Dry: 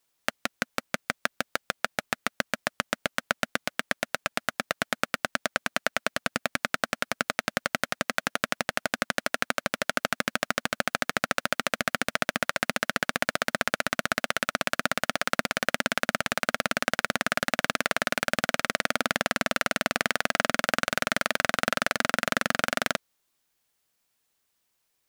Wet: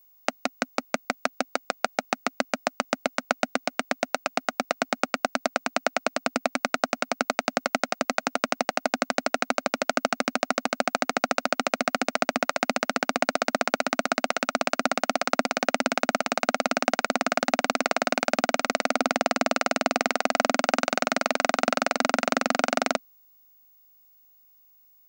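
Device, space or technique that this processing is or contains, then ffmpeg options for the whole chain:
old television with a line whistle: -af "highpass=frequency=220:width=0.5412,highpass=frequency=220:width=1.3066,equalizer=frequency=260:width_type=q:width=4:gain=6,equalizer=frequency=740:width_type=q:width=4:gain=6,equalizer=frequency=1700:width_type=q:width=4:gain=-9,equalizer=frequency=3300:width_type=q:width=4:gain=-9,lowpass=frequency=7700:width=0.5412,lowpass=frequency=7700:width=1.3066,aeval=exprs='val(0)+0.00112*sin(2*PI*15625*n/s)':channel_layout=same,volume=3.5dB"

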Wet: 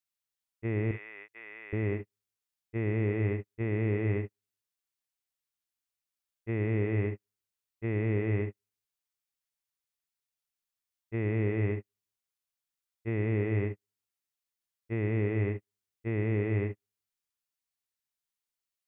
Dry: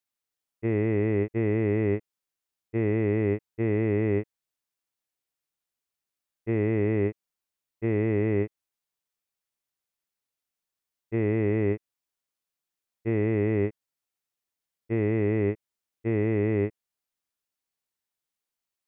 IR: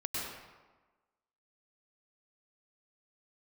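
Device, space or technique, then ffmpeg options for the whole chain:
keyed gated reverb: -filter_complex "[0:a]asettb=1/sr,asplit=3[link_01][link_02][link_03];[link_01]atrim=end=0.914[link_04];[link_02]atrim=start=0.91:end=1.73,asetpts=PTS-STARTPTS,afade=type=in:duration=0.004:curve=qsin,afade=type=out:start_time=0.816:duration=0.004:curve=qsin,highpass=1300[link_05];[link_03]atrim=start=1.726[link_06];[link_04][link_05]acrossfade=duration=0.004:curve1=hsin:curve2=qsin[link_07];[link_07][link_06]acrossfade=duration=0.004:curve1=qsin:curve2=hsin,asplit=3[link_08][link_09][link_10];[1:a]atrim=start_sample=2205[link_11];[link_09][link_11]afir=irnorm=-1:irlink=0[link_12];[link_10]apad=whole_len=832425[link_13];[link_12][link_13]sidechaingate=range=-55dB:threshold=-30dB:ratio=16:detection=peak,volume=-10dB[link_14];[link_08][link_14]amix=inputs=2:normalize=0,equalizer=frequency=390:width=0.42:gain=-7,volume=-2.5dB"

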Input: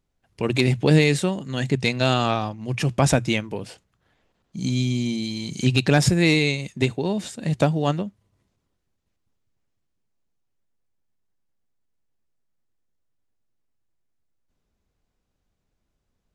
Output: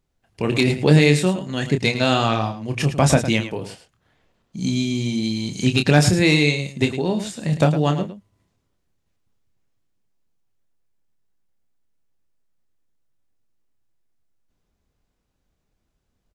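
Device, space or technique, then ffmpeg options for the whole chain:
slapback doubling: -filter_complex "[0:a]asplit=3[link_01][link_02][link_03];[link_02]adelay=27,volume=-7dB[link_04];[link_03]adelay=108,volume=-11dB[link_05];[link_01][link_04][link_05]amix=inputs=3:normalize=0,volume=1.5dB"

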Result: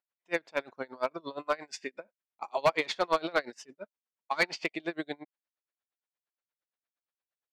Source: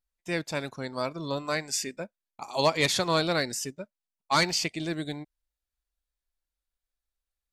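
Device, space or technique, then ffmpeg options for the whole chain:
helicopter radio: -af "highpass=390,lowpass=2600,aeval=exprs='val(0)*pow(10,-28*(0.5-0.5*cos(2*PI*8.6*n/s))/20)':channel_layout=same,asoftclip=type=hard:threshold=-22.5dB,volume=5.5dB"

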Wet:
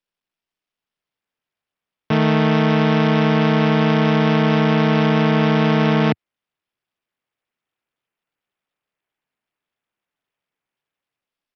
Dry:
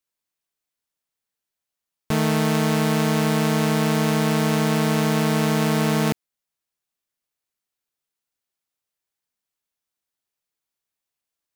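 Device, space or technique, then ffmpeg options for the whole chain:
Bluetooth headset: -af "highpass=frequency=100:width=0.5412,highpass=frequency=100:width=1.3066,dynaudnorm=framelen=440:gausssize=5:maxgain=5dB,aresample=8000,aresample=44100,volume=1.5dB" -ar 44100 -c:a sbc -b:a 64k

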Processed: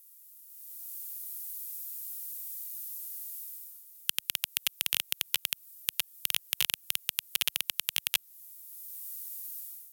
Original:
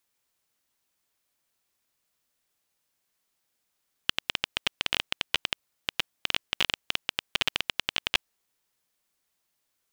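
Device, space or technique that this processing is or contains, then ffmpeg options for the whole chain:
FM broadcast chain: -filter_complex "[0:a]highpass=frequency=69:poles=1,dynaudnorm=framelen=480:gausssize=3:maxgain=16dB,acrossover=split=120|3900[link_01][link_02][link_03];[link_01]acompressor=threshold=-55dB:ratio=4[link_04];[link_02]acompressor=threshold=-21dB:ratio=4[link_05];[link_03]acompressor=threshold=-37dB:ratio=4[link_06];[link_04][link_05][link_06]amix=inputs=3:normalize=0,aemphasis=mode=production:type=75fm,alimiter=limit=-5.5dB:level=0:latency=1:release=49,asoftclip=type=hard:threshold=-9dB,lowpass=frequency=15000:width=0.5412,lowpass=frequency=15000:width=1.3066,aemphasis=mode=production:type=75fm,volume=-8dB"

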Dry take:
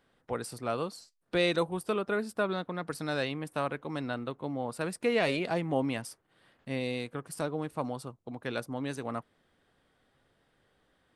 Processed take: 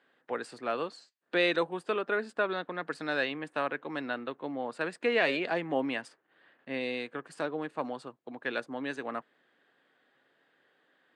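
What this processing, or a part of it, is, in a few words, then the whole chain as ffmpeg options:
television speaker: -filter_complex "[0:a]asettb=1/sr,asplit=3[link_01][link_02][link_03];[link_01]atrim=end=6.084[link_04];[link_02]atrim=start=6.08:end=6.74,asetpts=PTS-STARTPTS,afade=type=in:duration=0.004:curve=qsin,afade=type=out:start_time=0.656:duration=0.004:curve=qsin,highshelf=frequency=4300:gain=-9.5[link_05];[link_03]atrim=start=6.736[link_06];[link_04][link_05]acrossfade=duration=0.004:curve1=hsin:curve2=qsin[link_07];[link_07][link_06]acrossfade=duration=0.004:curve1=qsin:curve2=hsin,highpass=frequency=190:width=0.5412,highpass=frequency=190:width=1.3066,equalizer=frequency=200:width_type=q:width=4:gain=-8,equalizer=frequency=1700:width_type=q:width=4:gain=8,equalizer=frequency=2700:width_type=q:width=4:gain=3,equalizer=frequency=5600:width_type=q:width=4:gain=-10,lowpass=frequency=6800:width=0.5412,lowpass=frequency=6800:width=1.3066"

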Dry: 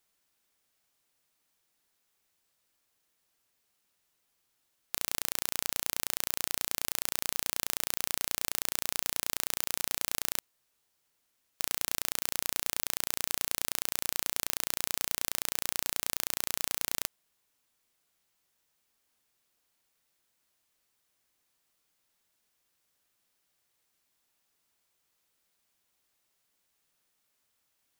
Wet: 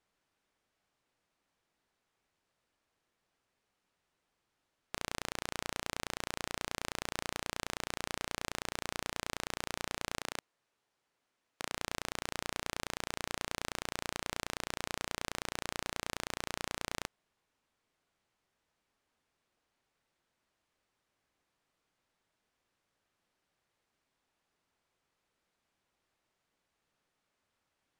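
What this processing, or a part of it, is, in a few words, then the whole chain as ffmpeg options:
through cloth: -filter_complex "[0:a]lowpass=9500,highshelf=frequency=3300:gain=-14,asettb=1/sr,asplit=3[link_01][link_02][link_03];[link_01]atrim=end=10.204[link_04];[link_02]atrim=start=10.2:end=11.72,asetpts=PTS-STARTPTS,afade=type=in:duration=0.004:curve=qsin,afade=type=out:start_time=1.516:duration=0.004:curve=qsin,lowshelf=frequency=120:gain=-10.5[link_05];[link_03]atrim=start=11.716[link_06];[link_04][link_05]acrossfade=duration=0.004:curve1=hsin:curve2=qsin[link_07];[link_07][link_06]acrossfade=duration=0.004:curve1=qsin:curve2=hsin,volume=3dB"

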